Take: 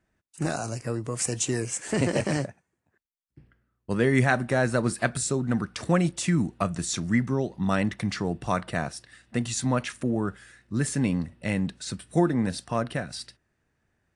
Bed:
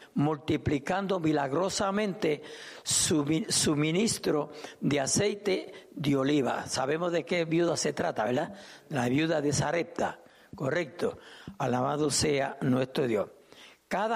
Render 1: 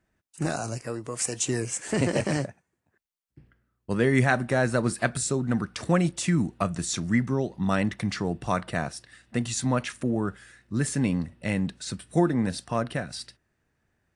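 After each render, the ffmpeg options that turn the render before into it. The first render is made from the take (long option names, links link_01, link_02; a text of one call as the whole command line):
ffmpeg -i in.wav -filter_complex "[0:a]asettb=1/sr,asplit=3[link_01][link_02][link_03];[link_01]atrim=end=0.784[link_04];[link_02]atrim=start=0.78:end=1.45,asetpts=PTS-STARTPTS,afade=type=in:duration=0.004:curve=qsin,afade=type=out:start_time=0.666:duration=0.004:curve=qsin,equalizer=frequency=110:width=0.53:gain=-7.5[link_05];[link_03]atrim=start=1.446[link_06];[link_04][link_05]acrossfade=duration=0.004:curve1=hsin:curve2=qsin[link_07];[link_07][link_06]acrossfade=duration=0.004:curve1=qsin:curve2=hsin" out.wav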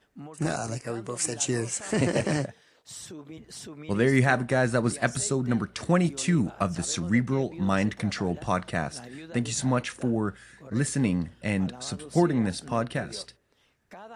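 ffmpeg -i in.wav -i bed.wav -filter_complex "[1:a]volume=-16dB[link_01];[0:a][link_01]amix=inputs=2:normalize=0" out.wav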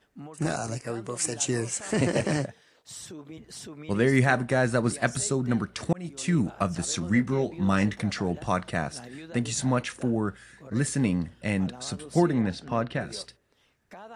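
ffmpeg -i in.wav -filter_complex "[0:a]asettb=1/sr,asplit=3[link_01][link_02][link_03];[link_01]atrim=end=6.994[link_04];[link_02]atrim=start=6.99:end=8.02,asetpts=PTS-STARTPTS,afade=type=in:duration=0.004:curve=qsin,afade=type=out:start_time=1.026:duration=0.004:curve=qsin,asplit=2[link_05][link_06];[link_06]adelay=20,volume=-8.5dB[link_07];[link_05][link_07]amix=inputs=2:normalize=0,atrim=end_sample=45423[link_08];[link_03]atrim=start=8.016[link_09];[link_04][link_08]acrossfade=duration=0.004:curve1=hsin:curve2=qsin[link_10];[link_10][link_09]acrossfade=duration=0.004:curve1=qsin:curve2=hsin,asplit=3[link_11][link_12][link_13];[link_11]afade=type=out:start_time=12.41:duration=0.02[link_14];[link_12]lowpass=4500,afade=type=in:start_time=12.41:duration=0.02,afade=type=out:start_time=12.99:duration=0.02[link_15];[link_13]afade=type=in:start_time=12.99:duration=0.02[link_16];[link_14][link_15][link_16]amix=inputs=3:normalize=0,asplit=2[link_17][link_18];[link_17]atrim=end=5.93,asetpts=PTS-STARTPTS,afade=type=out:start_time=5.926:duration=0.004:curve=hsin[link_19];[link_18]atrim=start=5.93,asetpts=PTS-STARTPTS,afade=type=in:duration=0.44[link_20];[link_19][link_20]concat=n=2:v=0:a=1" out.wav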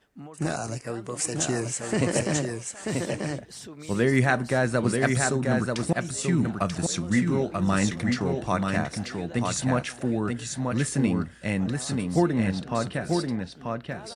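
ffmpeg -i in.wav -af "aecho=1:1:937:0.631" out.wav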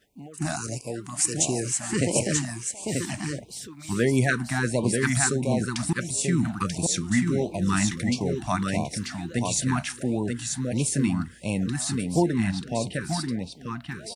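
ffmpeg -i in.wav -af "crystalizer=i=1:c=0,afftfilt=real='re*(1-between(b*sr/1024,420*pow(1600/420,0.5+0.5*sin(2*PI*1.5*pts/sr))/1.41,420*pow(1600/420,0.5+0.5*sin(2*PI*1.5*pts/sr))*1.41))':imag='im*(1-between(b*sr/1024,420*pow(1600/420,0.5+0.5*sin(2*PI*1.5*pts/sr))/1.41,420*pow(1600/420,0.5+0.5*sin(2*PI*1.5*pts/sr))*1.41))':win_size=1024:overlap=0.75" out.wav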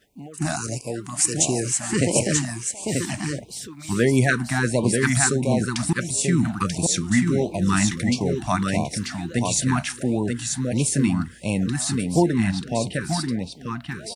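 ffmpeg -i in.wav -af "volume=3.5dB" out.wav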